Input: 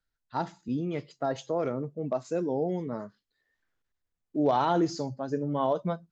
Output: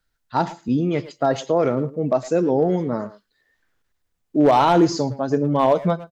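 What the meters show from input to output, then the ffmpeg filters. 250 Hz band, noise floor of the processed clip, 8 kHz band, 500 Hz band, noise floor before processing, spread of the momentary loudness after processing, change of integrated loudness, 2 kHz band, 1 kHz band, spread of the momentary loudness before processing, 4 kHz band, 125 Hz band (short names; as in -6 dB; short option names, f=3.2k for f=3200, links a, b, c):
+10.0 dB, -73 dBFS, n/a, +10.0 dB, -84 dBFS, 9 LU, +10.0 dB, +11.0 dB, +10.0 dB, 10 LU, +10.5 dB, +10.0 dB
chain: -filter_complex "[0:a]volume=18.5dB,asoftclip=hard,volume=-18.5dB,acontrast=33,asplit=2[a][b];[b]adelay=110,highpass=300,lowpass=3.4k,asoftclip=type=hard:threshold=-22dB,volume=-15dB[c];[a][c]amix=inputs=2:normalize=0,volume=5dB"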